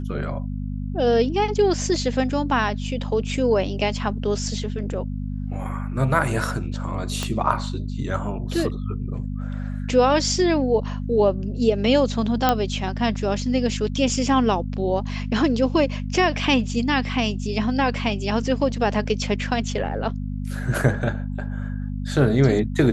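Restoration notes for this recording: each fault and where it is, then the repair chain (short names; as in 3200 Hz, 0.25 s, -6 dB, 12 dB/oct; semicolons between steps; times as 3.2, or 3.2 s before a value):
hum 50 Hz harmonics 5 -28 dBFS
7.23 pop -11 dBFS
12.49 pop -4 dBFS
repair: de-click; de-hum 50 Hz, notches 5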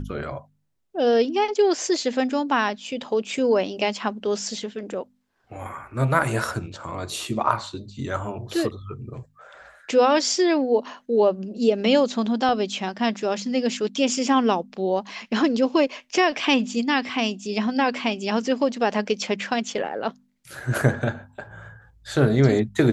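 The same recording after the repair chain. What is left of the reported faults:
7.23 pop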